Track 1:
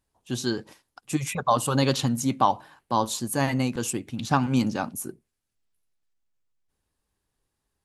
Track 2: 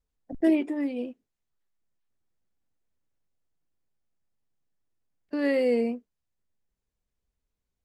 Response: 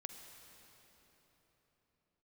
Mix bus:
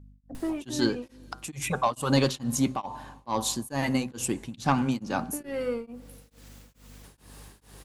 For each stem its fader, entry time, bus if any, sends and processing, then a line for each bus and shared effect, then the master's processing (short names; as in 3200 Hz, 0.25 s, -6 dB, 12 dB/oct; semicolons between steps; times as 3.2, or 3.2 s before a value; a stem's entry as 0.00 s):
+1.0 dB, 0.35 s, send -13 dB, HPF 97 Hz; upward compressor, threshold -28 dBFS; soft clip -12 dBFS, distortion -18 dB
-0.5 dB, 0.00 s, send -13.5 dB, limiter -20 dBFS, peak gain reduction 7.5 dB; soft clip -23.5 dBFS, distortion -17 dB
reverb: on, RT60 4.1 s, pre-delay 41 ms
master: de-hum 127.9 Hz, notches 14; hum 50 Hz, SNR 22 dB; beating tremolo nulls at 2.3 Hz